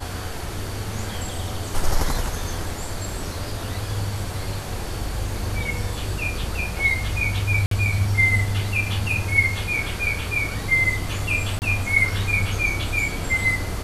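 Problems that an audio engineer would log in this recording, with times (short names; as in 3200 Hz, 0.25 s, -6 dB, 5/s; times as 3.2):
7.66–7.71 gap 53 ms
11.59–11.62 gap 29 ms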